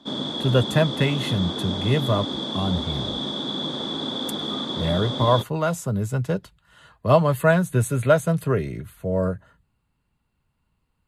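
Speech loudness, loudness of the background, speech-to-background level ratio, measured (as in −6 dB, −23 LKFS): −23.0 LKFS, −27.5 LKFS, 4.5 dB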